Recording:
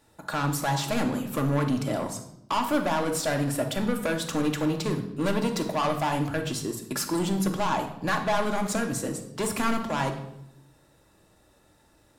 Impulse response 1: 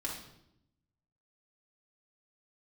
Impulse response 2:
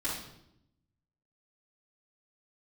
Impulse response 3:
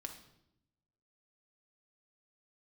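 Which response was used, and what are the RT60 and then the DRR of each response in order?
3; 0.80, 0.80, 0.80 seconds; −4.0, −11.5, 3.5 decibels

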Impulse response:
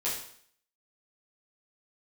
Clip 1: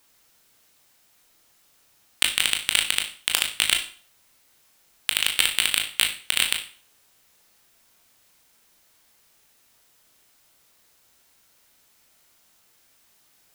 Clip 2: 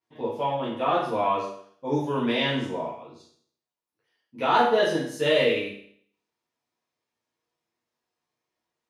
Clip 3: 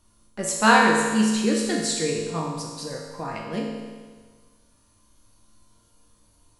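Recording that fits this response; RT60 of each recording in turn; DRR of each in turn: 2; 0.40, 0.60, 1.5 seconds; 3.0, −9.5, −2.5 decibels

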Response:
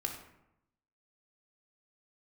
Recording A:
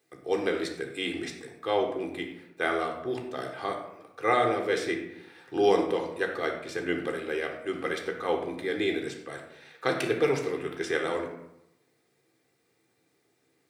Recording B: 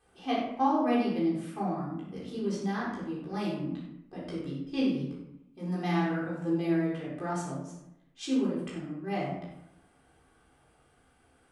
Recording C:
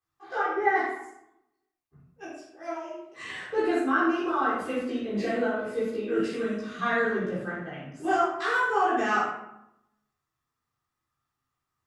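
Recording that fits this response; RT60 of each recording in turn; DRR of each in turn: A; 0.85, 0.85, 0.85 seconds; 2.0, −7.0, −12.0 decibels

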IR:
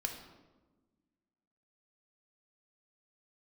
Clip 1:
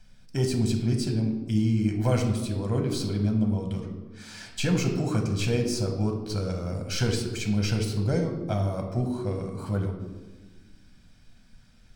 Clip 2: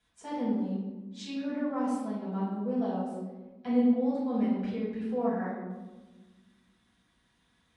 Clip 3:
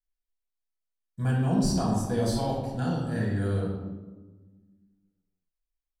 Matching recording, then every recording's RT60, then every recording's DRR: 1; 1.3, 1.2, 1.2 seconds; 2.5, −10.0, −5.5 decibels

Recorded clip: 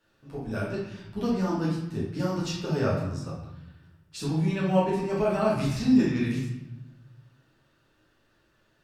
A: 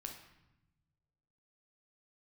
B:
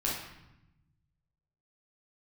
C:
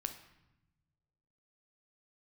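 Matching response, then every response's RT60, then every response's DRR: B; 0.90, 0.90, 0.90 seconds; 1.5, −7.5, 6.0 decibels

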